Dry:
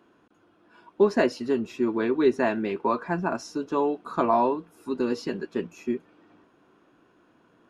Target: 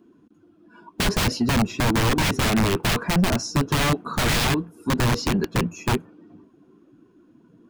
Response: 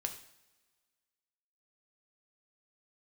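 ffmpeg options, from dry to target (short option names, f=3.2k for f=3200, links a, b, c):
-filter_complex "[0:a]aeval=exprs='(mod(13.3*val(0)+1,2)-1)/13.3':c=same,afftdn=nr=14:nf=-53,acrossover=split=3900[a][b];[b]acompressor=threshold=-39dB:ratio=4:attack=1:release=60[c];[a][c]amix=inputs=2:normalize=0,bass=f=250:g=13,treble=f=4k:g=8,aeval=exprs='0.237*sin(PI/2*1.58*val(0)/0.237)':c=same,volume=-2dB"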